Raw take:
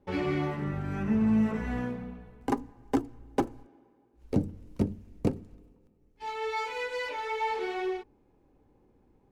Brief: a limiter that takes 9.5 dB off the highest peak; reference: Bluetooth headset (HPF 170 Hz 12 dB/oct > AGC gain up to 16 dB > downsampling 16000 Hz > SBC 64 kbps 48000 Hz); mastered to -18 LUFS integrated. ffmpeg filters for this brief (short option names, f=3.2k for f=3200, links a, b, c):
-af "alimiter=limit=-21.5dB:level=0:latency=1,highpass=170,dynaudnorm=m=16dB,aresample=16000,aresample=44100,volume=16.5dB" -ar 48000 -c:a sbc -b:a 64k